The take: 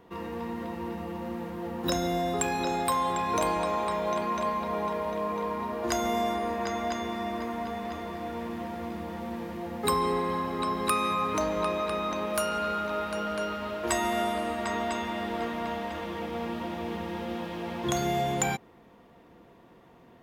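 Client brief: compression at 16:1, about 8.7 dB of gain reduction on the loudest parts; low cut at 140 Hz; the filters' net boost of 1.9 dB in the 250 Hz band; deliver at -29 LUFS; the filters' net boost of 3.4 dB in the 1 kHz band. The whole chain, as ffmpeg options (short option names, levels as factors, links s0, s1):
-af "highpass=140,equalizer=f=250:t=o:g=3,equalizer=f=1000:t=o:g=4,acompressor=threshold=0.0398:ratio=16,volume=1.58"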